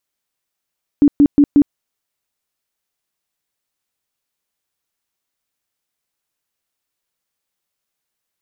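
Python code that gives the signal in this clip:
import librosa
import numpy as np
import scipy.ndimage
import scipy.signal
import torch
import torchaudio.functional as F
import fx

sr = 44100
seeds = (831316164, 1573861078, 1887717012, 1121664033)

y = fx.tone_burst(sr, hz=288.0, cycles=17, every_s=0.18, bursts=4, level_db=-5.5)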